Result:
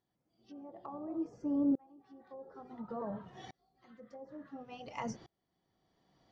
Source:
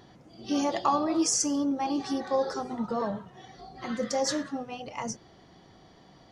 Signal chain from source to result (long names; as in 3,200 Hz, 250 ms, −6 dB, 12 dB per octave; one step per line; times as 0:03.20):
treble cut that deepens with the level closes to 670 Hz, closed at −24 dBFS
tremolo with a ramp in dB swelling 0.57 Hz, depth 33 dB